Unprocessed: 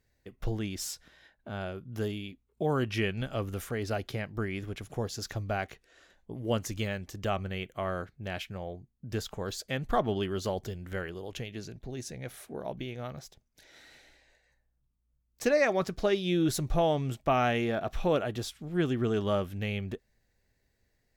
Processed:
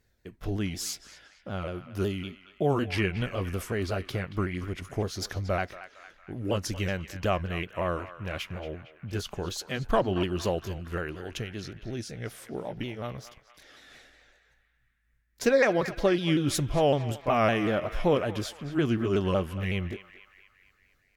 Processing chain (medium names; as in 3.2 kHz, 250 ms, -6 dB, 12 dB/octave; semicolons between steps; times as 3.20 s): sawtooth pitch modulation -2.5 st, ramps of 186 ms; band-passed feedback delay 229 ms, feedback 62%, band-pass 1.8 kHz, level -11.5 dB; trim +4 dB